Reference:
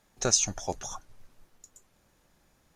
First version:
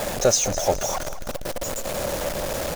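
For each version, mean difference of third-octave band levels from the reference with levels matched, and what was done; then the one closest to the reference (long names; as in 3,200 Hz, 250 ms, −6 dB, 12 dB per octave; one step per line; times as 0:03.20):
11.0 dB: converter with a step at zero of −24.5 dBFS
parametric band 570 Hz +14.5 dB 0.59 octaves
on a send: repeating echo 208 ms, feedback 41%, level −14 dB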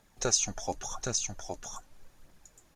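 3.5 dB: single-tap delay 816 ms −5 dB
in parallel at −1 dB: downward compressor, threshold −37 dBFS, peak gain reduction 18 dB
on the sum: flanger 0.87 Hz, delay 0 ms, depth 4.8 ms, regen +51%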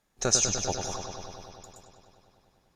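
8.0 dB: noise gate −58 dBFS, range −7 dB
on a send: bucket-brigade delay 99 ms, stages 4,096, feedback 80%, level −6 dB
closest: second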